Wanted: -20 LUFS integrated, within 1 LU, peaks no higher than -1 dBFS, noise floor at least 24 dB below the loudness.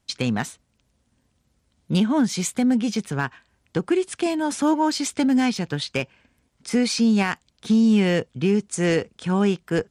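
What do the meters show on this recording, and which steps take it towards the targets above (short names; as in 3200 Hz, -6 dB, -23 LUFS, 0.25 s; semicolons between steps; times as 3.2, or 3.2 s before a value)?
clipped 0.2%; flat tops at -12.0 dBFS; loudness -22.5 LUFS; peak -12.0 dBFS; loudness target -20.0 LUFS
-> clip repair -12 dBFS; gain +2.5 dB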